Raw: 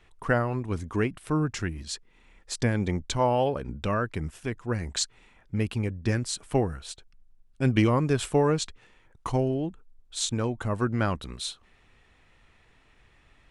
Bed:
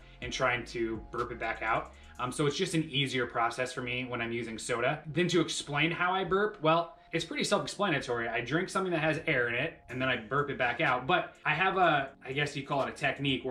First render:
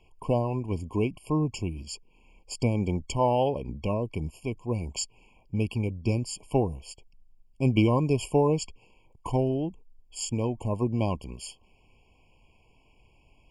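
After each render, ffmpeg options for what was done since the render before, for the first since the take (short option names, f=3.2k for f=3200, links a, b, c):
-af "afftfilt=real='re*eq(mod(floor(b*sr/1024/1100),2),0)':imag='im*eq(mod(floor(b*sr/1024/1100),2),0)':win_size=1024:overlap=0.75"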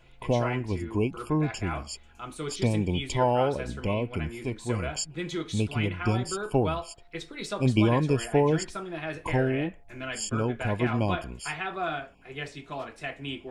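-filter_complex "[1:a]volume=-5.5dB[a];[0:a][a]amix=inputs=2:normalize=0"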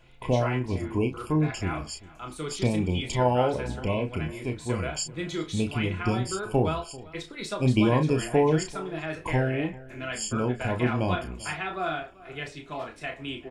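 -filter_complex "[0:a]asplit=2[a][b];[b]adelay=32,volume=-7dB[c];[a][c]amix=inputs=2:normalize=0,asplit=2[d][e];[e]adelay=390.7,volume=-20dB,highshelf=f=4k:g=-8.79[f];[d][f]amix=inputs=2:normalize=0"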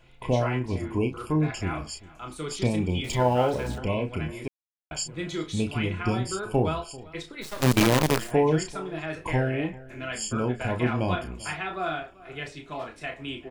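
-filter_complex "[0:a]asettb=1/sr,asplit=3[a][b][c];[a]atrim=end=3.044[d];[b]atrim=start=3.04:end=3.78,asetpts=PTS-STARTPTS,afade=t=in:d=0.004:c=qsin,afade=t=out:st=0.736:d=0.004:c=qsin,aeval=exprs='val(0)+0.5*0.0112*sgn(val(0))':c=same[e];[c]atrim=start=3.776[f];[d][e]acrossfade=d=0.004:c1=hsin:c2=qsin[g];[g][f]acrossfade=d=0.004:c1=qsin:c2=hsin,asplit=3[h][i][j];[h]afade=t=out:st=7.41:d=0.02[k];[i]acrusher=bits=4:dc=4:mix=0:aa=0.000001,afade=t=in:st=7.41:d=0.02,afade=t=out:st=8.3:d=0.02[l];[j]afade=t=in:st=8.3:d=0.02[m];[k][l][m]amix=inputs=3:normalize=0,asplit=3[n][o][p];[n]atrim=end=4.48,asetpts=PTS-STARTPTS,afade=t=out:st=4.476:d=0.004:c=hsin[q];[o]atrim=start=4.48:end=4.91,asetpts=PTS-STARTPTS,volume=0[r];[p]atrim=start=4.91,asetpts=PTS-STARTPTS,afade=t=in:d=0.004:c=hsin[s];[q][r][s]concat=n=3:v=0:a=1"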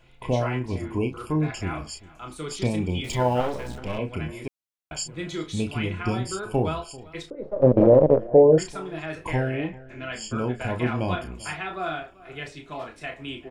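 -filter_complex "[0:a]asettb=1/sr,asplit=3[a][b][c];[a]atrim=end=3.404[d];[b]atrim=start=3.4:end=3.99,asetpts=PTS-STARTPTS,afade=t=in:d=0.004:c=qsin,afade=t=out:st=0.586:d=0.004:c=qsin,aeval=exprs='if(lt(val(0),0),0.251*val(0),val(0))':c=same[e];[c]atrim=start=3.986[f];[d][e]acrossfade=d=0.004:c1=hsin:c2=qsin[g];[g][f]acrossfade=d=0.004:c1=qsin:c2=hsin,asettb=1/sr,asplit=3[h][i][j];[h]atrim=end=7.304[k];[i]atrim=start=7.3:end=8.58,asetpts=PTS-STARTPTS,afade=t=in:d=0.004:c=qsin,afade=t=out:st=1.276:d=0.004:c=qsin,lowpass=f=550:t=q:w=6.5[l];[j]atrim=start=8.576[m];[k][l]acrossfade=d=0.004:c1=hsin:c2=qsin[n];[n][m]acrossfade=d=0.004:c1=qsin:c2=hsin,asettb=1/sr,asplit=3[o][p][q];[o]atrim=end=9.574[r];[p]atrim=start=9.57:end=10.33,asetpts=PTS-STARTPTS,afade=t=in:d=0.004:c=qsin,afade=t=out:st=0.756:d=0.004:c=qsin,lowpass=5.7k[s];[q]atrim=start=10.326[t];[r][s]acrossfade=d=0.004:c1=hsin:c2=qsin[u];[u][t]acrossfade=d=0.004:c1=qsin:c2=hsin"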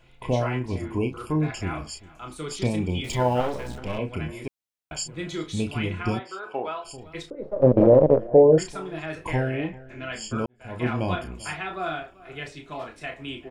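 -filter_complex "[0:a]asplit=3[a][b][c];[a]afade=t=out:st=6.18:d=0.02[d];[b]highpass=570,lowpass=2.8k,afade=t=in:st=6.18:d=0.02,afade=t=out:st=6.84:d=0.02[e];[c]afade=t=in:st=6.84:d=0.02[f];[d][e][f]amix=inputs=3:normalize=0,asplit=2[g][h];[g]atrim=end=10.46,asetpts=PTS-STARTPTS,afade=t=out:st=10.456:d=0.004:c=hsin[i];[h]atrim=start=10.46,asetpts=PTS-STARTPTS,afade=t=in:d=0.41:c=qua[j];[i][j]concat=n=2:v=0:a=1"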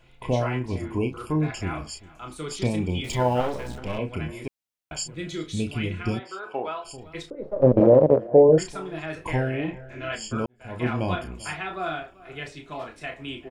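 -filter_complex "[0:a]asettb=1/sr,asplit=3[a][b][c];[a]atrim=end=5.144[d];[b]atrim=start=5.14:end=6.23,asetpts=PTS-STARTPTS,afade=t=in:d=0.004:c=qsin,afade=t=out:st=1.086:d=0.004:c=qsin,equalizer=f=940:w=1.4:g=-8.5[e];[c]atrim=start=6.226[f];[d][e]acrossfade=d=0.004:c1=hsin:c2=qsin[g];[g][f]acrossfade=d=0.004:c1=qsin:c2=hsin,asettb=1/sr,asplit=3[h][i][j];[h]atrim=end=7.804[k];[i]atrim=start=7.8:end=8.49,asetpts=PTS-STARTPTS,afade=t=in:d=0.004:c=qsin,afade=t=out:st=0.686:d=0.004:c=qsin,highpass=86[l];[j]atrim=start=8.486[m];[k][l]acrossfade=d=0.004:c1=hsin:c2=qsin[n];[n][m]acrossfade=d=0.004:c1=qsin:c2=hsin,asplit=3[o][p][q];[o]afade=t=out:st=9.67:d=0.02[r];[p]asplit=2[s][t];[t]adelay=29,volume=-2dB[u];[s][u]amix=inputs=2:normalize=0,afade=t=in:st=9.67:d=0.02,afade=t=out:st=10.15:d=0.02[v];[q]afade=t=in:st=10.15:d=0.02[w];[r][v][w]amix=inputs=3:normalize=0"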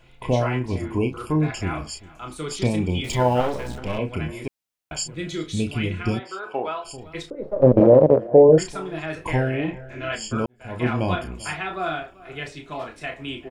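-af "volume=3dB,alimiter=limit=-3dB:level=0:latency=1"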